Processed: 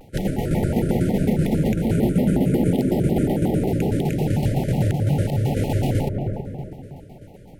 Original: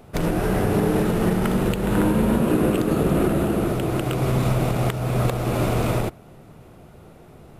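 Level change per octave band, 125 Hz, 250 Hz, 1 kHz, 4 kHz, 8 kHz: +2.0 dB, +1.0 dB, -5.0 dB, -3.5 dB, -4.0 dB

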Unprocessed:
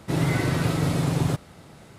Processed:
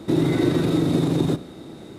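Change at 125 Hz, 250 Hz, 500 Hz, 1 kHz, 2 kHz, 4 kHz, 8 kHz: -1.0 dB, +6.5 dB, +6.5 dB, -2.0 dB, -4.0 dB, +1.5 dB, -4.5 dB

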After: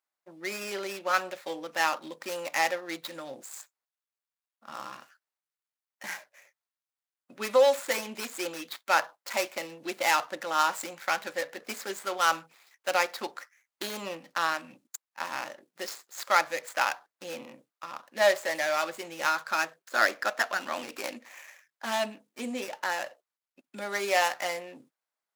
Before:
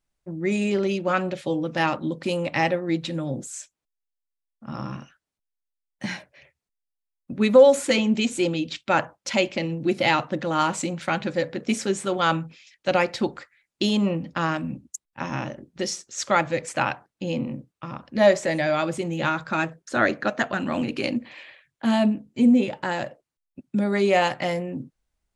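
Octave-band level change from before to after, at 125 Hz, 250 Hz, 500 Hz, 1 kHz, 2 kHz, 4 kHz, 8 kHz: -25.5 dB, -19.0 dB, -8.0 dB, -2.5 dB, -2.0 dB, -3.5 dB, -2.0 dB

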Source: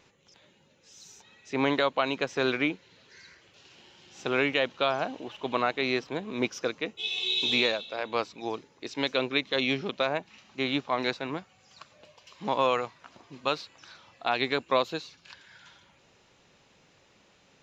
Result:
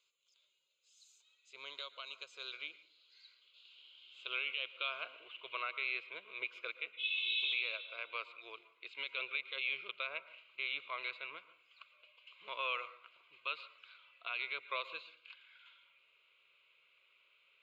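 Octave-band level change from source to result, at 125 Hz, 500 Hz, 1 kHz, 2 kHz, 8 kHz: under -35 dB, -23.0 dB, -15.5 dB, -7.0 dB, no reading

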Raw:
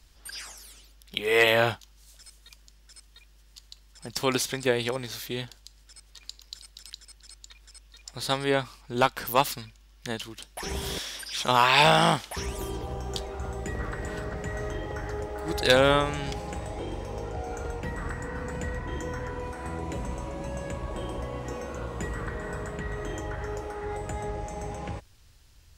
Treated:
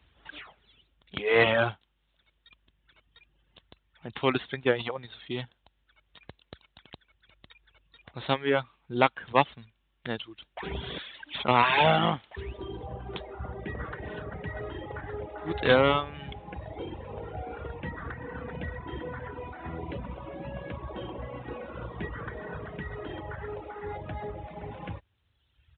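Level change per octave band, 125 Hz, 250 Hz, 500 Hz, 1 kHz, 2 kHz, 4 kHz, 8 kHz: -2.5 dB, -1.0 dB, -1.5 dB, -2.0 dB, -2.0 dB, -5.5 dB, under -40 dB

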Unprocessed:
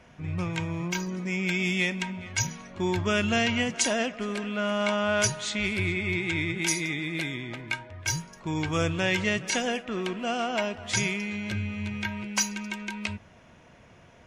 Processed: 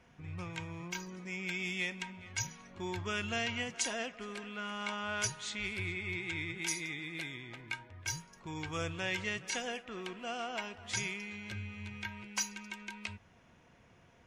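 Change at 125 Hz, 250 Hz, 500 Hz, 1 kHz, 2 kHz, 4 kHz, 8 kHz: -12.0 dB, -14.0 dB, -13.0 dB, -9.5 dB, -8.5 dB, -8.5 dB, -8.5 dB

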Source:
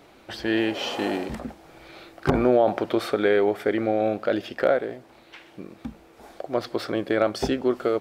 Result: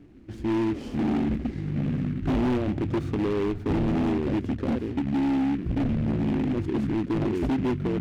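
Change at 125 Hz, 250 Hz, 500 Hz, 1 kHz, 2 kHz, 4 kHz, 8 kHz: +9.0 dB, +3.5 dB, -8.0 dB, -6.0 dB, -8.5 dB, -10.0 dB, no reading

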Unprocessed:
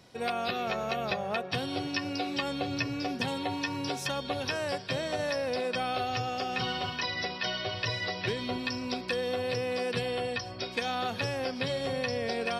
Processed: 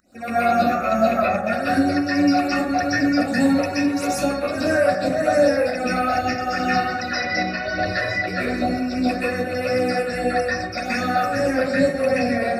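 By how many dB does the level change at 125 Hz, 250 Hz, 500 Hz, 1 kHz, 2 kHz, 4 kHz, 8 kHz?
+6.5 dB, +15.0 dB, +11.5 dB, +12.0 dB, +11.0 dB, +1.5 dB, +9.0 dB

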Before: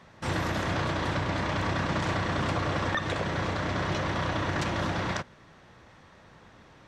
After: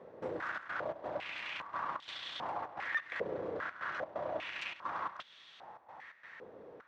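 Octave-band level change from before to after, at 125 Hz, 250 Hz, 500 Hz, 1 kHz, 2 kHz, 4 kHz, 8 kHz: -28.5 dB, -19.0 dB, -8.0 dB, -8.5 dB, -7.5 dB, -10.0 dB, under -20 dB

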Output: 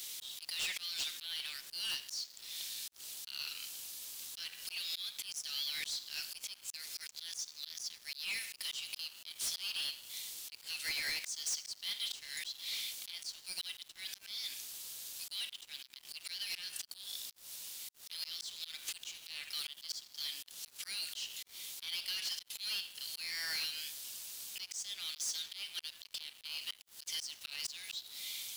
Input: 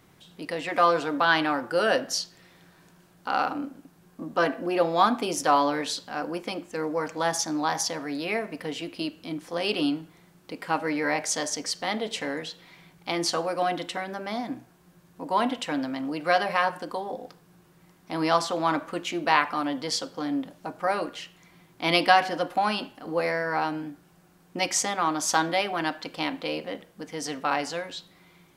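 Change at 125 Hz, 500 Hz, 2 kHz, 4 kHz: under -30 dB, -39.0 dB, -15.5 dB, -4.0 dB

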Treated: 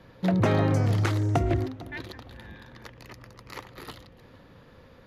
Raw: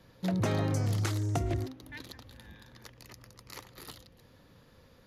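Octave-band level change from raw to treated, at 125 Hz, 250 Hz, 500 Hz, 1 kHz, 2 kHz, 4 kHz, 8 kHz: +6.0 dB, +7.0 dB, +8.0 dB, +8.0 dB, +7.5 dB, +2.5 dB, -2.5 dB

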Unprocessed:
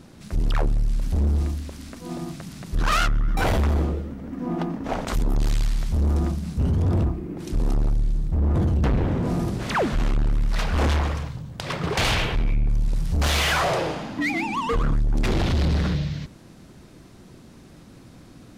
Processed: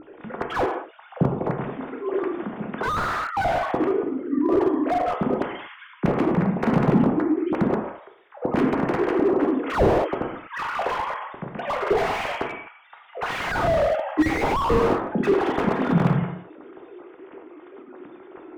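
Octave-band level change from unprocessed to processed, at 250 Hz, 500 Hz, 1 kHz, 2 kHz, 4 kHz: +5.0 dB, +8.0 dB, +4.5 dB, 0.0 dB, -8.0 dB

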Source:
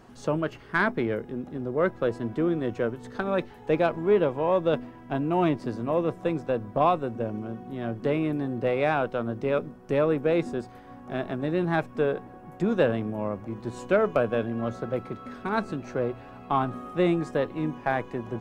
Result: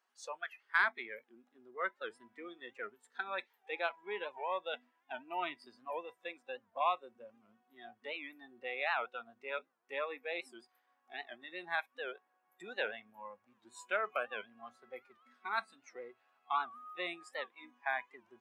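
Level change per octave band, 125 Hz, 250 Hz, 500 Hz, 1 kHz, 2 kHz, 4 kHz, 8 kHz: under -40 dB, -28.5 dB, -18.0 dB, -9.0 dB, -4.0 dB, -3.5 dB, no reading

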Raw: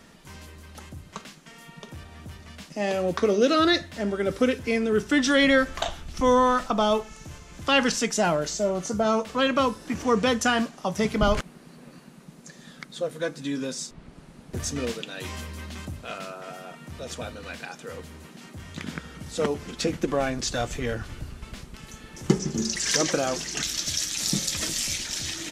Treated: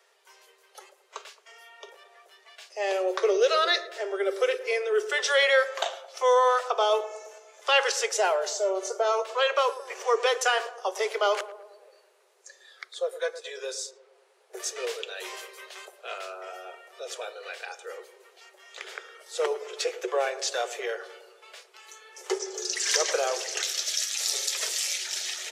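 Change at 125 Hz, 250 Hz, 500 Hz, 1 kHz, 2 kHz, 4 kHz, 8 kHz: under -40 dB, under -15 dB, -0.5 dB, -0.5 dB, -0.5 dB, -0.5 dB, -1.0 dB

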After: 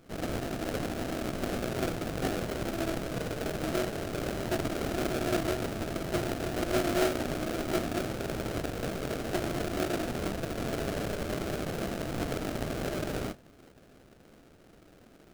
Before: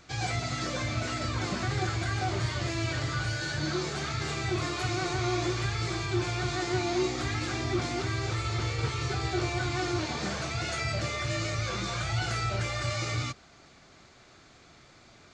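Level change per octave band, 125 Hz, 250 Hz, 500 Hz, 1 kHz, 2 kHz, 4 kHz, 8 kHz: -7.0 dB, +2.0 dB, +2.5 dB, -3.5 dB, -5.5 dB, -6.5 dB, -4.0 dB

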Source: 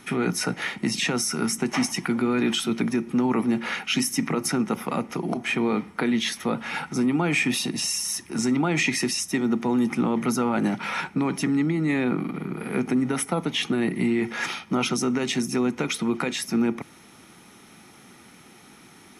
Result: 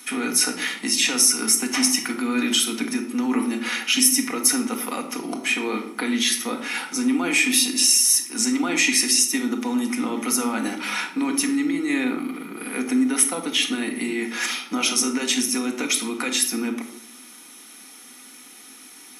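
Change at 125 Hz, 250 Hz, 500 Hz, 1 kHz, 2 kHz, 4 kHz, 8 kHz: -14.5 dB, 0.0 dB, -3.5 dB, -1.0 dB, +3.5 dB, +7.0 dB, +11.0 dB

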